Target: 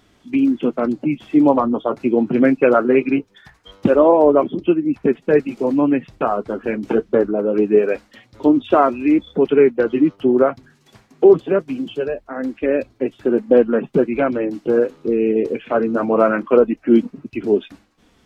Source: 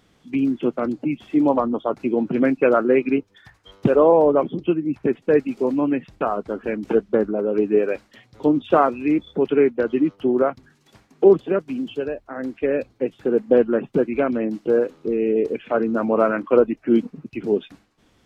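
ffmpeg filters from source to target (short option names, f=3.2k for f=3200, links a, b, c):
-af "flanger=delay=3:depth=5.2:regen=-50:speed=0.23:shape=sinusoidal,alimiter=level_in=8.5dB:limit=-1dB:release=50:level=0:latency=1,volume=-1dB"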